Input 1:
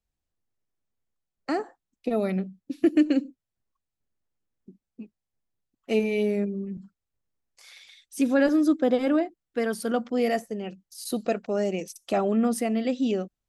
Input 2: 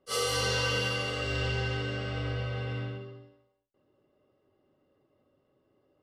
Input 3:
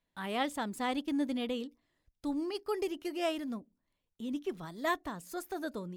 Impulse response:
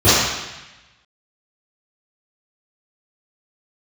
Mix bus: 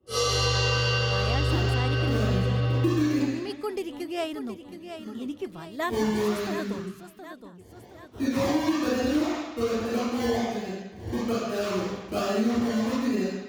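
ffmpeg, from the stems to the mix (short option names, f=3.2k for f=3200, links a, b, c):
-filter_complex "[0:a]acrusher=samples=27:mix=1:aa=0.000001:lfo=1:lforange=16.2:lforate=1.2,volume=-16.5dB,asplit=2[a][b];[b]volume=-13dB[c];[1:a]acrossover=split=360[d][e];[d]acompressor=threshold=-54dB:ratio=1.5[f];[f][e]amix=inputs=2:normalize=0,volume=-9dB,asplit=2[g][h];[h]volume=-9.5dB[i];[2:a]adelay=950,volume=2.5dB,asplit=2[j][k];[k]volume=-10dB[l];[3:a]atrim=start_sample=2205[m];[c][i]amix=inputs=2:normalize=0[n];[n][m]afir=irnorm=-1:irlink=0[o];[l]aecho=0:1:720|1440|2160|2880|3600|4320|5040:1|0.49|0.24|0.118|0.0576|0.0282|0.0138[p];[a][g][j][o][p]amix=inputs=5:normalize=0,acompressor=threshold=-22dB:ratio=3"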